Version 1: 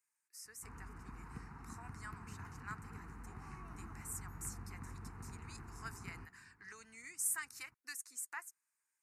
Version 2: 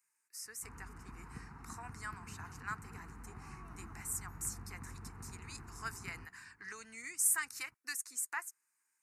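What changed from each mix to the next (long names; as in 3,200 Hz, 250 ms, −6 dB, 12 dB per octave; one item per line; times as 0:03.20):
speech +6.0 dB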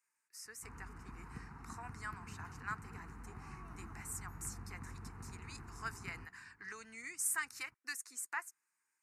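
speech: add high-shelf EQ 6,700 Hz −8.5 dB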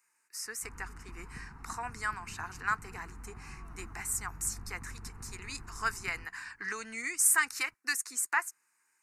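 speech +11.0 dB
background: remove high-pass filter 63 Hz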